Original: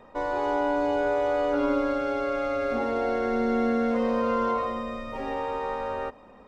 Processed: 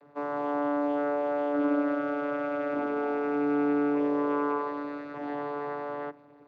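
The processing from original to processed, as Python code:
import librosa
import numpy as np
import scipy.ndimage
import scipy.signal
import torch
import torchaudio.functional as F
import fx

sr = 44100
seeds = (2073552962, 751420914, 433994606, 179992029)

y = fx.dynamic_eq(x, sr, hz=1500.0, q=1.2, threshold_db=-43.0, ratio=4.0, max_db=5)
y = fx.vocoder(y, sr, bands=16, carrier='saw', carrier_hz=145.0)
y = F.gain(torch.from_numpy(y), -2.5).numpy()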